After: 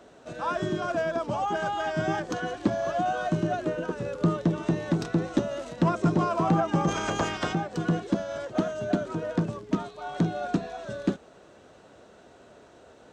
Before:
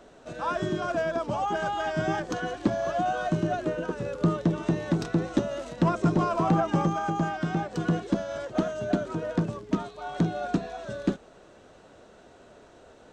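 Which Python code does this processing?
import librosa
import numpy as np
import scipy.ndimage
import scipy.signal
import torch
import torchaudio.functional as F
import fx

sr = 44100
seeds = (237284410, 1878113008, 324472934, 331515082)

y = fx.spec_clip(x, sr, under_db=22, at=(6.87, 7.52), fade=0.02)
y = scipy.signal.sosfilt(scipy.signal.butter(2, 58.0, 'highpass', fs=sr, output='sos'), y)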